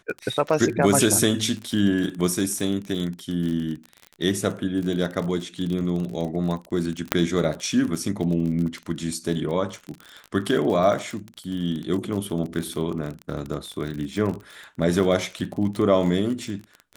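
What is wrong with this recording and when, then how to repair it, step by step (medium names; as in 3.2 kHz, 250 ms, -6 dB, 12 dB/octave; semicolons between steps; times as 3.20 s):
crackle 36 per s -28 dBFS
7.12 s: pop -2 dBFS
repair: de-click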